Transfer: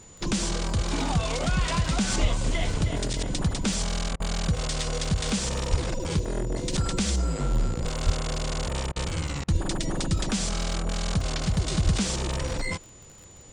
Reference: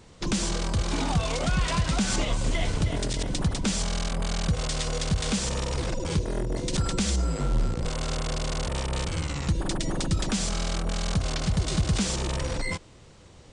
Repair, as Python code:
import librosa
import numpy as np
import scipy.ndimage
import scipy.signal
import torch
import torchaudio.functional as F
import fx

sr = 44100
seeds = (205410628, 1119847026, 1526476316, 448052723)

y = fx.fix_declick_ar(x, sr, threshold=6.5)
y = fx.notch(y, sr, hz=7000.0, q=30.0)
y = fx.fix_deplosive(y, sr, at_s=(2.21, 5.7, 8.05, 9.52, 11.84))
y = fx.fix_interpolate(y, sr, at_s=(4.16, 8.92, 9.44), length_ms=39.0)